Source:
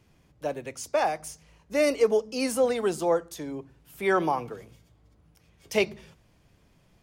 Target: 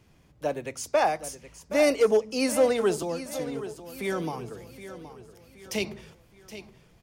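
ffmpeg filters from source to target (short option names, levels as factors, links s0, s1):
-filter_complex "[0:a]asettb=1/sr,asplit=3[s0][s1][s2];[s0]atrim=end=3.024[s3];[s1]atrim=start=3.02:end=5.85,asetpts=PTS-STARTPTS,afade=t=in:d=0.004:c=qsin,afade=t=out:st=2.826:d=0.004:c=qsin,acrossover=split=270|3000[s4][s5][s6];[s5]acompressor=threshold=0.00891:ratio=2.5[s7];[s4][s7][s6]amix=inputs=3:normalize=0[s8];[s2]atrim=start=5.846[s9];[s3][s8]acrossfade=d=0.004:c1=hsin:c2=qsin[s10];[s10][s9]acrossfade=d=0.004:c1=qsin:c2=hsin,asoftclip=type=hard:threshold=0.15,aecho=1:1:771|1542|2313|3084:0.224|0.101|0.0453|0.0204,volume=1.26"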